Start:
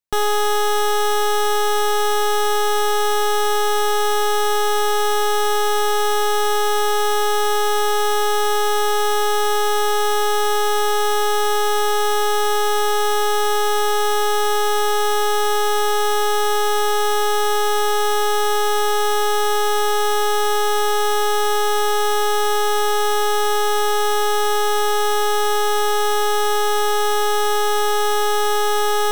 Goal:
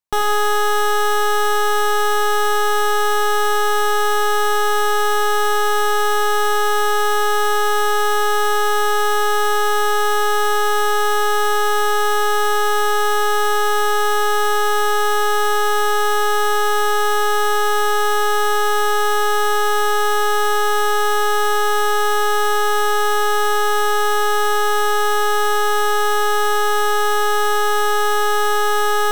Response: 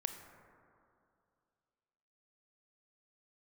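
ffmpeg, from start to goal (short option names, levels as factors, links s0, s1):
-filter_complex "[0:a]equalizer=f=990:w=1.6:g=5.5[s0];[1:a]atrim=start_sample=2205,afade=t=out:st=0.25:d=0.01,atrim=end_sample=11466,asetrate=41013,aresample=44100[s1];[s0][s1]afir=irnorm=-1:irlink=0"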